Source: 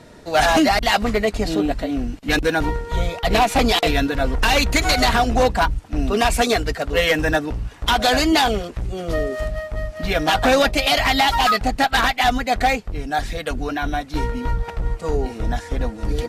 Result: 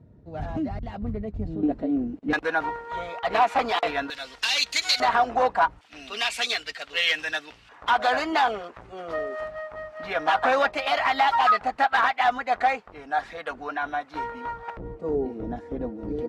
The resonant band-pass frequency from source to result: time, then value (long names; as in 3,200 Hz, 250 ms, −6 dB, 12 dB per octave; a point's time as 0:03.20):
resonant band-pass, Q 1.3
100 Hz
from 0:01.63 310 Hz
from 0:02.33 1,100 Hz
from 0:04.10 4,200 Hz
from 0:05.00 1,000 Hz
from 0:05.81 3,100 Hz
from 0:07.69 1,100 Hz
from 0:14.77 330 Hz